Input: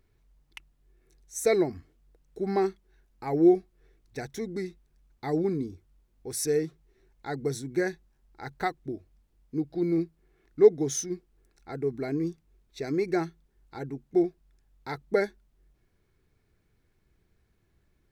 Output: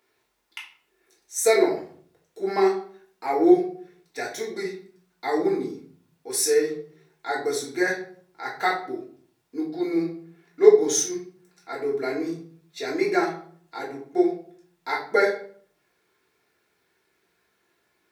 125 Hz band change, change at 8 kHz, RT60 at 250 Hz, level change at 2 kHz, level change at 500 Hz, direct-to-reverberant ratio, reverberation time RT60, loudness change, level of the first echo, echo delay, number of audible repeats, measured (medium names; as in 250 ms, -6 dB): -8.0 dB, +8.5 dB, 0.90 s, +9.5 dB, +5.0 dB, -5.5 dB, 0.55 s, +4.5 dB, no echo, no echo, no echo